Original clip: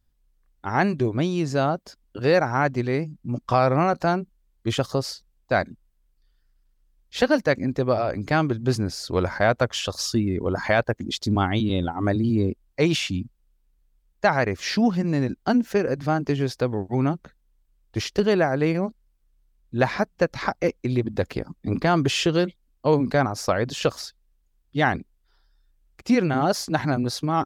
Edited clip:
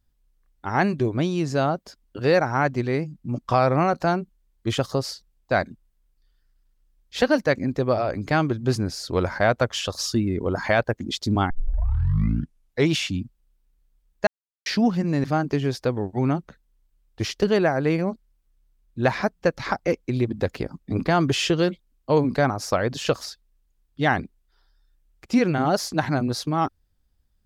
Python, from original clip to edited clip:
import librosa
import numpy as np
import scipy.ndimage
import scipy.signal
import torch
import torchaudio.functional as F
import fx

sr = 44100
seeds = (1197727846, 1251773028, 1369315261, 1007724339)

y = fx.edit(x, sr, fx.tape_start(start_s=11.5, length_s=1.43),
    fx.silence(start_s=14.27, length_s=0.39),
    fx.cut(start_s=15.24, length_s=0.76), tone=tone)